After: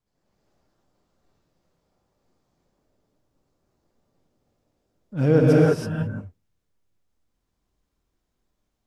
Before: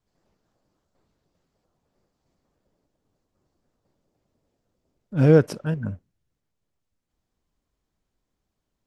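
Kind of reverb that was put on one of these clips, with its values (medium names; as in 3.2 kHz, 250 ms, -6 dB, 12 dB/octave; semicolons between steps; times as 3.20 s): gated-style reverb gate 350 ms rising, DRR -5 dB; trim -4 dB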